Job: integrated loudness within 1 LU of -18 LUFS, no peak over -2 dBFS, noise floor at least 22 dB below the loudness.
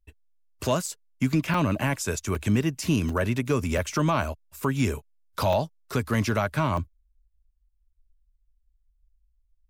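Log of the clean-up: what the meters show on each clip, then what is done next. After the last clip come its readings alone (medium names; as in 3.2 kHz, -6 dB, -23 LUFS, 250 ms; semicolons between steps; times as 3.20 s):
dropouts 8; longest dropout 3.3 ms; loudness -26.5 LUFS; peak level -13.5 dBFS; loudness target -18.0 LUFS
-> interpolate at 0.86/1.54/2.35/3.09/3.78/5.53/6.14/6.77 s, 3.3 ms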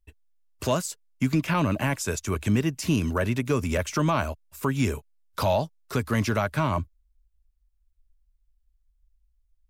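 dropouts 0; loudness -26.5 LUFS; peak level -13.5 dBFS; loudness target -18.0 LUFS
-> trim +8.5 dB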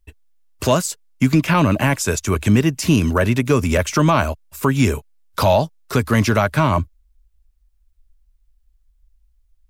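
loudness -18.0 LUFS; peak level -5.0 dBFS; noise floor -60 dBFS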